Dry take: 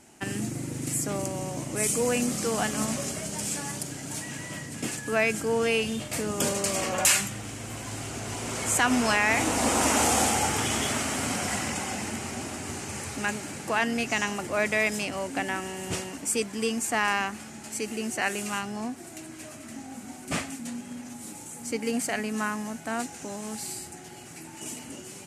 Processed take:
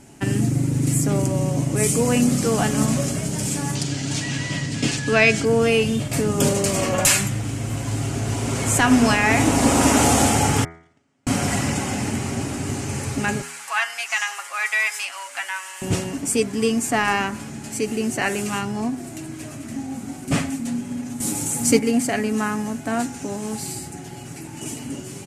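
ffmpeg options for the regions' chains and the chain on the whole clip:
-filter_complex "[0:a]asettb=1/sr,asplit=3[a][b][c];[a]atrim=end=3.754[d];[b]atrim=start=3.75:end=5.45,asetpts=PTS-STARTPTS,afade=t=in:d=0.004:c=qsin,afade=t=out:st=1.696:d=0.004:c=qsin,lowpass=7.1k,equalizer=f=4k:w=0.69:g=10.5[e];[c]atrim=start=5.446[f];[d][e]acrossfade=d=0.004:c1=hsin:c2=qsin[g];[g][f]acrossfade=d=0.004:c1=qsin:c2=hsin,asettb=1/sr,asplit=3[h][i][j];[h]atrim=end=10.644[k];[i]atrim=start=10.64:end=11.27,asetpts=PTS-STARTPTS,afade=t=in:d=0.004:c=qsin,afade=t=out:st=0.626:d=0.004:c=qsin,agate=range=-46dB:threshold=-23dB:ratio=16:release=100:detection=peak,highpass=110,lowpass=6k[l];[j]atrim=start=11.266[m];[k][l]acrossfade=d=0.004:c1=hsin:c2=qsin[n];[n][m]acrossfade=d=0.004:c1=qsin:c2=hsin,asettb=1/sr,asplit=3[o][p][q];[o]atrim=end=13.424[r];[p]atrim=start=13.42:end=15.82,asetpts=PTS-STARTPTS,afade=t=in:d=0.004:c=qsin,afade=t=out:st=2.396:d=0.004:c=qsin,highpass=f=1k:w=0.5412,highpass=f=1k:w=1.3066,aecho=1:1:7.3:0.47,atrim=end_sample=105840[s];[q]atrim=start=15.816[t];[r][s]acrossfade=d=0.004:c1=hsin:c2=qsin[u];[u][t]acrossfade=d=0.004:c1=qsin:c2=hsin,asettb=1/sr,asplit=3[v][w][x];[v]atrim=end=21.204[y];[w]atrim=start=21.2:end=21.79,asetpts=PTS-STARTPTS,afade=t=in:d=0.004:c=qsin,afade=t=out:st=0.586:d=0.004:c=qsin,highpass=42,highshelf=f=4.4k:g=8,acontrast=59[z];[x]atrim=start=21.786[aa];[y][z]acrossfade=d=0.004:c1=hsin:c2=qsin[ab];[ab][aa]acrossfade=d=0.004:c1=qsin:c2=hsin,lowshelf=f=320:g=11.5,aecho=1:1:7.2:0.34,bandreject=f=82.77:t=h:w=4,bandreject=f=165.54:t=h:w=4,bandreject=f=248.31:t=h:w=4,bandreject=f=331.08:t=h:w=4,bandreject=f=413.85:t=h:w=4,bandreject=f=496.62:t=h:w=4,bandreject=f=579.39:t=h:w=4,bandreject=f=662.16:t=h:w=4,bandreject=f=744.93:t=h:w=4,bandreject=f=827.7:t=h:w=4,bandreject=f=910.47:t=h:w=4,bandreject=f=993.24:t=h:w=4,bandreject=f=1.07601k:t=h:w=4,bandreject=f=1.15878k:t=h:w=4,bandreject=f=1.24155k:t=h:w=4,bandreject=f=1.32432k:t=h:w=4,bandreject=f=1.40709k:t=h:w=4,bandreject=f=1.48986k:t=h:w=4,bandreject=f=1.57263k:t=h:w=4,bandreject=f=1.6554k:t=h:w=4,bandreject=f=1.73817k:t=h:w=4,bandreject=f=1.82094k:t=h:w=4,bandreject=f=1.90371k:t=h:w=4,bandreject=f=1.98648k:t=h:w=4,bandreject=f=2.06925k:t=h:w=4,bandreject=f=2.15202k:t=h:w=4,bandreject=f=2.23479k:t=h:w=4,bandreject=f=2.31756k:t=h:w=4,volume=3.5dB"

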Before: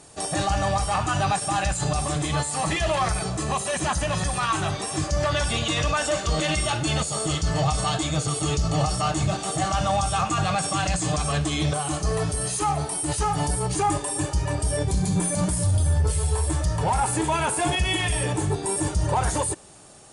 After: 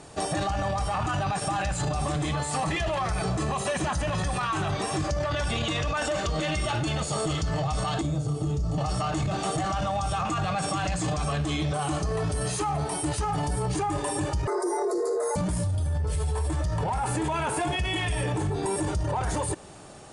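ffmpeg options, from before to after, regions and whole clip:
-filter_complex "[0:a]asettb=1/sr,asplit=3[a][b][c];[a]atrim=end=8.014[d];[b]atrim=start=8.01:end=8.78,asetpts=PTS-STARTPTS,afade=t=in:d=0.004:c=qsin,afade=t=out:st=0.766:d=0.004:c=qsin,equalizer=f=2.3k:t=o:w=2.6:g=-12,acrossover=split=310|1800|5700[e][f][g][h];[e]acompressor=threshold=-25dB:ratio=3[i];[f]acompressor=threshold=-41dB:ratio=3[j];[g]acompressor=threshold=-50dB:ratio=3[k];[h]acompressor=threshold=-47dB:ratio=3[l];[i][j][k][l]amix=inputs=4:normalize=0,asplit=2[m][n];[n]adelay=34,volume=-6.5dB[o];[m][o]amix=inputs=2:normalize=0,atrim=end_sample=33957[p];[c]atrim=start=8.776[q];[d][p]acrossfade=d=0.004:c1=hsin:c2=qsin[r];[r][q]acrossfade=d=0.004:c1=qsin:c2=hsin,asettb=1/sr,asplit=3[s][t][u];[s]atrim=end=14.474[v];[t]atrim=start=14.47:end=15.36,asetpts=PTS-STARTPTS,afade=t=in:d=0.004:c=qsin,afade=t=out:st=0.886:d=0.004:c=qsin,afreqshift=290,asuperstop=centerf=2900:order=4:qfactor=1.1,asplit=2[w][x];[x]adelay=13,volume=-10.5dB[y];[w][y]amix=inputs=2:normalize=0,atrim=end_sample=39249[z];[u]atrim=start=15.356[aa];[v][z]acrossfade=d=0.004:c1=hsin:c2=qsin[ab];[ab][aa]acrossfade=d=0.004:c1=qsin:c2=hsin,aemphasis=mode=reproduction:type=50kf,alimiter=limit=-22dB:level=0:latency=1:release=10,acompressor=threshold=-29dB:ratio=6,volume=5dB"

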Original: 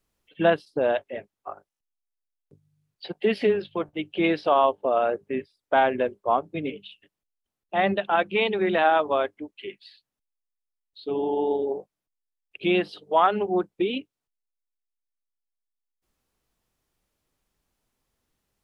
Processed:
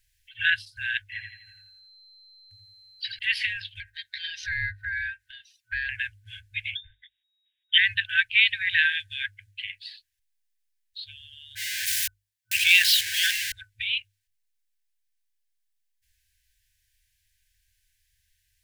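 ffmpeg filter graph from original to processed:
-filter_complex "[0:a]asettb=1/sr,asplit=3[a][b][c];[a]atrim=end=1.124[d];[b]atrim=start=1.12:end=3.19,asetpts=PTS-STARTPTS,afade=t=in:d=0.004:c=qsin,afade=t=out:st=2.066:d=0.004:c=qsin,bandreject=f=3.6k:w=17,aecho=1:1:84|168|252|336|420:0.501|0.221|0.097|0.0427|0.0188,atrim=end_sample=91287,aeval=exprs='val(0)+0.001*sin(2*PI*4100*n/s)':c=same[e];[c]atrim=start=3.186[f];[d][e]acrossfade=d=0.004:c1=hsin:c2=qsin[g];[g][f]acrossfade=d=0.004:c1=qsin:c2=hsin,asettb=1/sr,asplit=3[h][i][j];[h]atrim=end=3.804[k];[i]atrim=start=3.8:end=5.89,asetpts=PTS-STARTPTS,afade=t=in:d=0.004:c=qsin,afade=t=out:st=2.086:d=0.004:c=qsin,aecho=1:1:4.6:0.67,atrim=end_sample=92169,acompressor=threshold=-36dB:ratio=2.5:attack=3.2:release=140:knee=1:detection=peak,aeval=exprs='val(0)*sin(2*PI*980*n/s)':c=same[l];[j]atrim=start=5.886[m];[k][l]acrossfade=d=0.004:c1=hsin:c2=qsin[n];[n][m]acrossfade=d=0.004:c1=qsin:c2=hsin,asettb=1/sr,asplit=3[o][p][q];[o]atrim=end=6.754[r];[p]atrim=start=6.75:end=7.78,asetpts=PTS-STARTPTS,afade=t=in:d=0.004:c=qsin,afade=t=out:st=1.026:d=0.004:c=qsin,acrusher=bits=7:mode=log:mix=0:aa=0.000001,lowpass=f=3.2k:t=q:w=0.5098,lowpass=f=3.2k:t=q:w=0.6013,lowpass=f=3.2k:t=q:w=0.9,lowpass=f=3.2k:t=q:w=2.563,afreqshift=-3800[s];[q]atrim=start=7.776[t];[r][s]acrossfade=d=0.004:c1=hsin:c2=qsin[u];[u][t]acrossfade=d=0.004:c1=qsin:c2=hsin,asettb=1/sr,asplit=3[v][w][x];[v]atrim=end=11.554[y];[w]atrim=start=11.55:end=13.52,asetpts=PTS-STARTPTS,afade=t=in:d=0.004:c=qsin,afade=t=out:st=1.966:d=0.004:c=qsin,aeval=exprs='val(0)+0.5*0.0473*sgn(val(0))':c=same,highpass=170,adynamicequalizer=threshold=0.0282:dfrequency=1500:dqfactor=0.7:tfrequency=1500:tqfactor=0.7:attack=5:release=100:ratio=0.375:range=2:mode=boostabove:tftype=highshelf[z];[x]atrim=start=13.516[aa];[y][z]acrossfade=d=0.004:c1=hsin:c2=qsin[ab];[ab][aa]acrossfade=d=0.004:c1=qsin:c2=hsin,bandreject=f=50:t=h:w=6,bandreject=f=100:t=h:w=6,afftfilt=real='re*(1-between(b*sr/4096,110,1500))':imag='im*(1-between(b*sr/4096,110,1500))':win_size=4096:overlap=0.75,volume=8.5dB"

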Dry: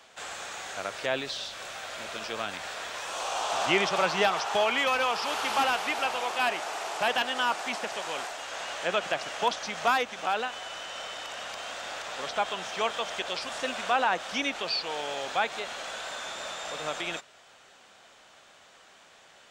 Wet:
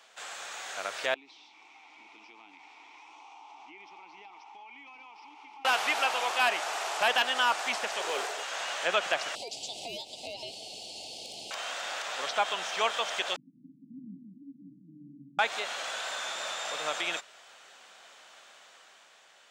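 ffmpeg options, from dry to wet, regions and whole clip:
-filter_complex "[0:a]asettb=1/sr,asplit=3[a][b][c];[a]atrim=end=1.144[d];[b]atrim=start=1.14:end=5.65,asetpts=PTS-STARTPTS,afade=t=in:d=0.004:c=qsin,afade=t=out:st=4.506:d=0.004:c=qsin,asplit=3[e][f][g];[e]bandpass=f=300:t=q:w=8,volume=0dB[h];[f]bandpass=f=870:t=q:w=8,volume=-6dB[i];[g]bandpass=f=2.24k:t=q:w=8,volume=-9dB[j];[h][i][j]amix=inputs=3:normalize=0,equalizer=f=5.6k:w=3.1:g=7,acompressor=threshold=-49dB:ratio=4:attack=3.2:release=140:knee=1:detection=peak[k];[c]atrim=start=5.646[l];[d][k]acrossfade=d=0.004:c1=hsin:c2=qsin[m];[m][l]acrossfade=d=0.004:c1=qsin:c2=hsin,asettb=1/sr,asplit=3[n][o][p];[n]atrim=end=8.004[q];[o]atrim=start=8:end=8.43,asetpts=PTS-STARTPTS,afade=t=in:d=0.004:c=qsin,afade=t=out:st=0.426:d=0.004:c=qsin,volume=29dB,asoftclip=hard,volume=-29dB,equalizer=f=420:t=o:w=0.42:g=15[r];[p]atrim=start=8.426[s];[q][r]acrossfade=d=0.004:c1=hsin:c2=qsin[t];[t][s]acrossfade=d=0.004:c1=qsin:c2=hsin,asettb=1/sr,asplit=3[u][v][w];[u]atrim=end=9.354[x];[v]atrim=start=9.35:end=11.51,asetpts=PTS-STARTPTS,afade=t=in:d=0.004:c=qsin,afade=t=out:st=2.156:d=0.004:c=qsin,aeval=exprs='val(0)*sin(2*PI*1400*n/s)':c=same,acompressor=threshold=-30dB:ratio=12:attack=3.2:release=140:knee=1:detection=peak,asuperstop=centerf=1500:order=8:qfactor=0.72[y];[w]atrim=start=11.506[z];[x][y]acrossfade=d=0.004:c1=hsin:c2=qsin[aa];[aa][z]acrossfade=d=0.004:c1=qsin:c2=hsin,asettb=1/sr,asplit=3[ab][ac][ad];[ab]atrim=end=13.364[ae];[ac]atrim=start=13.36:end=15.39,asetpts=PTS-STARTPTS,afade=t=in:d=0.004:c=qsin,afade=t=out:st=2.026:d=0.004:c=qsin,aeval=exprs='abs(val(0))':c=same,asuperpass=centerf=200:order=20:qfactor=1.1,aecho=1:1:183:0.596,atrim=end_sample=89523[af];[ad]atrim=start=15.386[ag];[ae][af]acrossfade=d=0.004:c1=hsin:c2=qsin[ah];[ah][ag]acrossfade=d=0.004:c1=qsin:c2=hsin,highpass=f=660:p=1,dynaudnorm=f=150:g=11:m=4.5dB,volume=-2dB"

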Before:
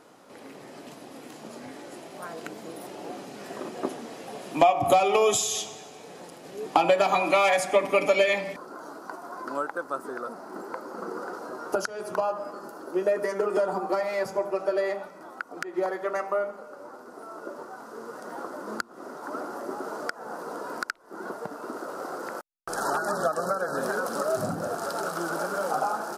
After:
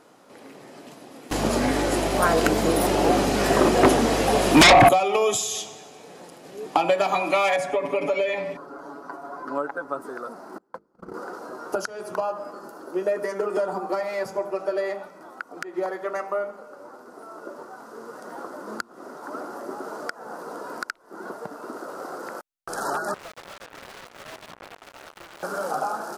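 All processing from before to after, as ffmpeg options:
-filter_complex "[0:a]asettb=1/sr,asplit=3[a][b][c];[a]atrim=end=1.314[d];[b]atrim=start=1.31:end=4.89,asetpts=PTS-STARTPTS,afade=t=in:d=0.004:c=qsin,afade=t=out:st=3.576:d=0.004:c=qsin,aeval=exprs='0.376*sin(PI/2*5.62*val(0)/0.376)':c=same,aeval=exprs='val(0)+0.0282*(sin(2*PI*50*n/s)+sin(2*PI*2*50*n/s)/2+sin(2*PI*3*50*n/s)/3+sin(2*PI*4*50*n/s)/4+sin(2*PI*5*50*n/s)/5)':c=same[e];[c]atrim=start=4.886[f];[d][e]acrossfade=d=0.004:c1=hsin:c2=qsin[g];[g][f]acrossfade=d=0.004:c1=qsin:c2=hsin,asettb=1/sr,asplit=3[h][i][j];[h]atrim=end=7.564[k];[i]atrim=start=7.56:end=10.02,asetpts=PTS-STARTPTS,afade=t=in:d=0.004:c=qsin,afade=t=out:st=2.456:d=0.004:c=qsin,acompressor=threshold=-24dB:ratio=2.5:attack=3.2:release=140:knee=1:detection=peak,highshelf=f=3.6k:g=-12,aecho=1:1:7.1:0.9,atrim=end_sample=108486[l];[j]atrim=start=10.016[m];[k][l]acrossfade=d=0.004:c1=hsin:c2=qsin[n];[n][m]acrossfade=d=0.004:c1=qsin:c2=hsin,asettb=1/sr,asplit=3[o][p][q];[o]atrim=end=10.584[r];[p]atrim=start=10.58:end=11.14,asetpts=PTS-STARTPTS,afade=t=in:d=0.004:c=qsin,afade=t=out:st=0.556:d=0.004:c=qsin,agate=range=-33dB:threshold=-34dB:ratio=16:release=100:detection=peak,bass=f=250:g=15,treble=f=4k:g=-3,bandreject=f=50:t=h:w=6,bandreject=f=100:t=h:w=6,bandreject=f=150:t=h:w=6,bandreject=f=200:t=h:w=6,bandreject=f=250:t=h:w=6,bandreject=f=300:t=h:w=6,bandreject=f=350:t=h:w=6,bandreject=f=400:t=h:w=6,bandreject=f=450:t=h:w=6[s];[q]atrim=start=11.136[t];[r][s]acrossfade=d=0.004:c1=hsin:c2=qsin[u];[u][t]acrossfade=d=0.004:c1=qsin:c2=hsin,asettb=1/sr,asplit=3[v][w][x];[v]atrim=end=23.144[y];[w]atrim=start=23.14:end=25.43,asetpts=PTS-STARTPTS,afade=t=in:d=0.004:c=qsin,afade=t=out:st=2.286:d=0.004:c=qsin,acrusher=bits=3:mix=0:aa=0.5,aeval=exprs='(mod(16.8*val(0)+1,2)-1)/16.8':c=same,asplit=2[z][aa];[aa]highpass=f=720:p=1,volume=8dB,asoftclip=type=tanh:threshold=-24.5dB[ab];[z][ab]amix=inputs=2:normalize=0,lowpass=f=1.1k:p=1,volume=-6dB[ac];[x]atrim=start=25.426[ad];[y][ac]acrossfade=d=0.004:c1=hsin:c2=qsin[ae];[ae][ad]acrossfade=d=0.004:c1=qsin:c2=hsin"

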